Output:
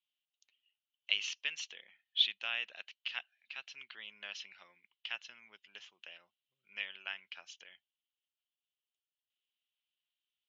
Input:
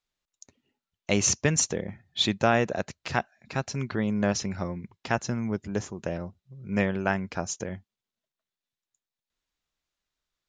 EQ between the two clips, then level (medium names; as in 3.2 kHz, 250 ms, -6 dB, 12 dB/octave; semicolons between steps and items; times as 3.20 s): band-pass filter 3 kHz, Q 7; distance through air 230 m; tilt EQ +4 dB/octave; +3.5 dB